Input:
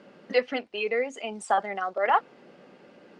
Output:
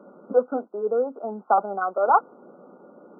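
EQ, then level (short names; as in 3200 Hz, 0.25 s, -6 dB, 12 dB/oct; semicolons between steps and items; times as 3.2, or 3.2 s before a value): HPF 180 Hz 24 dB/oct; brick-wall FIR low-pass 1500 Hz; +4.5 dB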